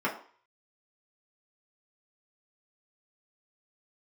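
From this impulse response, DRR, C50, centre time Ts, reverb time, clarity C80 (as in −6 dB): −4.5 dB, 10.0 dB, 21 ms, 0.45 s, 13.5 dB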